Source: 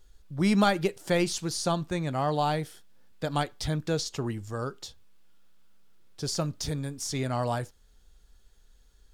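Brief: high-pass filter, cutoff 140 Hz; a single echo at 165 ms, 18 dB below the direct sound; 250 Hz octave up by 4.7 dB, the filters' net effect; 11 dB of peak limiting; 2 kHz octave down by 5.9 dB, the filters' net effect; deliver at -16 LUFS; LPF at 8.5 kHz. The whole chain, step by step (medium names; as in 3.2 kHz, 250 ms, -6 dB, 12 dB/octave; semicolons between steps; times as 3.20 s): high-pass 140 Hz; low-pass 8.5 kHz; peaking EQ 250 Hz +8 dB; peaking EQ 2 kHz -8 dB; peak limiter -19.5 dBFS; delay 165 ms -18 dB; trim +15 dB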